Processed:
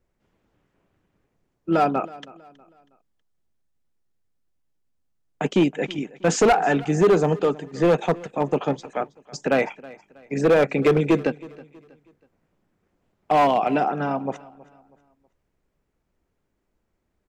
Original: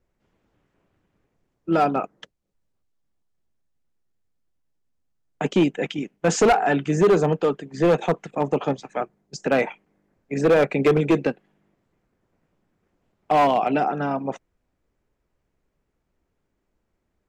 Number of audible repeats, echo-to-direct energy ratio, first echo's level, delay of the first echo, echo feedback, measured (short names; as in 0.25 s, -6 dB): 2, -20.5 dB, -21.0 dB, 0.321 s, 37%